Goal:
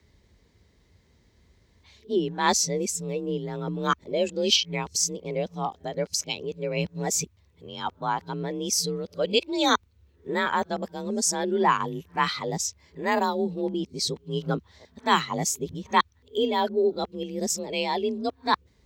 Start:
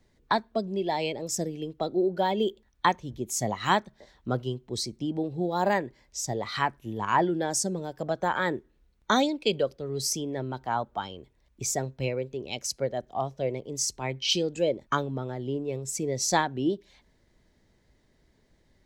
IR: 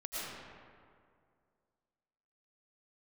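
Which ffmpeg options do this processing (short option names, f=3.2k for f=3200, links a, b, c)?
-af "areverse,equalizer=f=100:t=o:w=0.67:g=-4,equalizer=f=250:t=o:w=0.67:g=-6,equalizer=f=630:t=o:w=0.67:g=-8,equalizer=f=1.6k:t=o:w=0.67:g=-4,equalizer=f=10k:t=o:w=0.67:g=-5,afreqshift=36,volume=5.5dB"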